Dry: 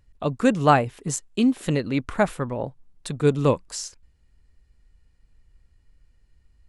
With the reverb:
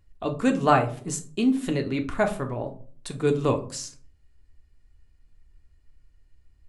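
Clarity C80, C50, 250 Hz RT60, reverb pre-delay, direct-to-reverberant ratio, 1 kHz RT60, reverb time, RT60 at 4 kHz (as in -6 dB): 19.0 dB, 13.5 dB, 0.70 s, 3 ms, 3.5 dB, 0.40 s, 0.45 s, 0.25 s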